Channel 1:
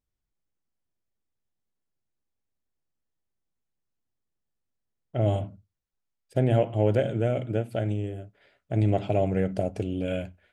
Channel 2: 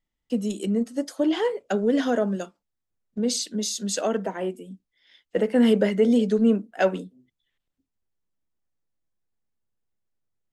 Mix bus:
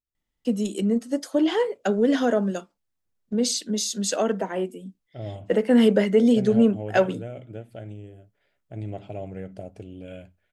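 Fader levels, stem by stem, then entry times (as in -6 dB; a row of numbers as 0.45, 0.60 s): -10.5, +1.5 dB; 0.00, 0.15 s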